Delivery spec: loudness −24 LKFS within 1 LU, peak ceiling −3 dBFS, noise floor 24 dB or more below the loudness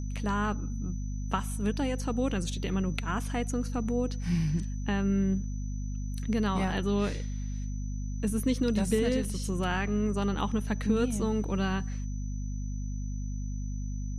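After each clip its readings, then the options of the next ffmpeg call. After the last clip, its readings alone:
mains hum 50 Hz; hum harmonics up to 250 Hz; level of the hum −31 dBFS; interfering tone 6,000 Hz; level of the tone −52 dBFS; integrated loudness −31.0 LKFS; sample peak −13.0 dBFS; target loudness −24.0 LKFS
→ -af "bandreject=frequency=50:width_type=h:width=6,bandreject=frequency=100:width_type=h:width=6,bandreject=frequency=150:width_type=h:width=6,bandreject=frequency=200:width_type=h:width=6,bandreject=frequency=250:width_type=h:width=6"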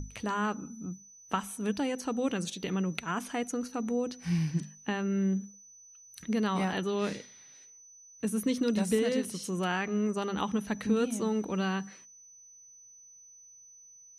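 mains hum none found; interfering tone 6,000 Hz; level of the tone −52 dBFS
→ -af "bandreject=frequency=6000:width=30"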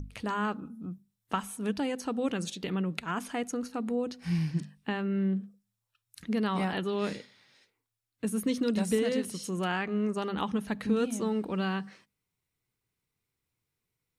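interfering tone none found; integrated loudness −32.0 LKFS; sample peak −15.0 dBFS; target loudness −24.0 LKFS
→ -af "volume=8dB"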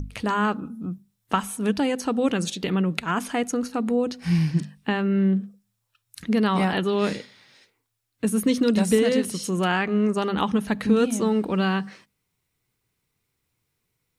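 integrated loudness −24.0 LKFS; sample peak −7.0 dBFS; background noise floor −77 dBFS

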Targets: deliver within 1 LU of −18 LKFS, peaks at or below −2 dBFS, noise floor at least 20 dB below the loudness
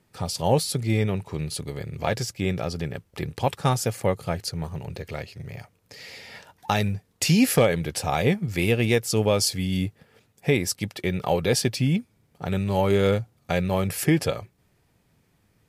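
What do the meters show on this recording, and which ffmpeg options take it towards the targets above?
integrated loudness −25.0 LKFS; sample peak −8.0 dBFS; target loudness −18.0 LKFS
→ -af "volume=7dB,alimiter=limit=-2dB:level=0:latency=1"

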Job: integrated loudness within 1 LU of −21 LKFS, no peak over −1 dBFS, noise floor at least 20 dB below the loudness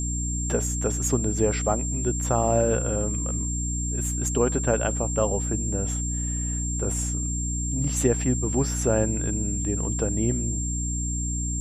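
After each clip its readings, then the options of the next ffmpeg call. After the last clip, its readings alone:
mains hum 60 Hz; hum harmonics up to 300 Hz; level of the hum −26 dBFS; interfering tone 7,400 Hz; level of the tone −30 dBFS; integrated loudness −25.5 LKFS; sample peak −8.0 dBFS; target loudness −21.0 LKFS
→ -af "bandreject=frequency=60:width_type=h:width=4,bandreject=frequency=120:width_type=h:width=4,bandreject=frequency=180:width_type=h:width=4,bandreject=frequency=240:width_type=h:width=4,bandreject=frequency=300:width_type=h:width=4"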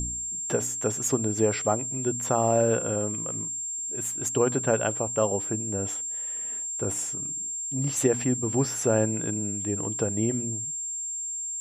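mains hum none found; interfering tone 7,400 Hz; level of the tone −30 dBFS
→ -af "bandreject=frequency=7400:width=30"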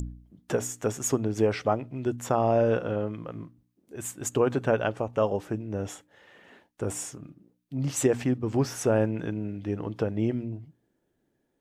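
interfering tone none found; integrated loudness −28.5 LKFS; sample peak −10.0 dBFS; target loudness −21.0 LKFS
→ -af "volume=7.5dB"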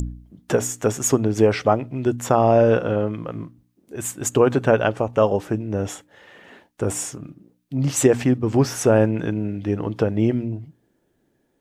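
integrated loudness −21.0 LKFS; sample peak −2.5 dBFS; background noise floor −67 dBFS

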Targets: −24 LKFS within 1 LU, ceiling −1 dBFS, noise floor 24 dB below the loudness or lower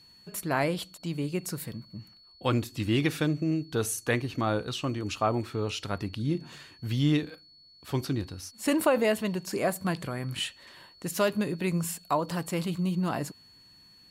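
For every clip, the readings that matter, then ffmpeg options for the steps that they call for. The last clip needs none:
interfering tone 4,400 Hz; level of the tone −54 dBFS; integrated loudness −30.0 LKFS; sample peak −13.0 dBFS; target loudness −24.0 LKFS
→ -af "bandreject=frequency=4400:width=30"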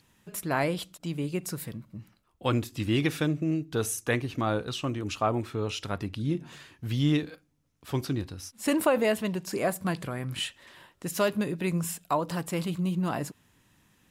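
interfering tone none found; integrated loudness −30.0 LKFS; sample peak −13.0 dBFS; target loudness −24.0 LKFS
→ -af "volume=6dB"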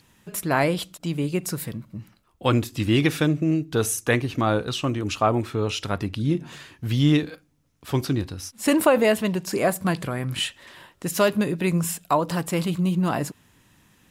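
integrated loudness −24.0 LKFS; sample peak −7.0 dBFS; background noise floor −61 dBFS

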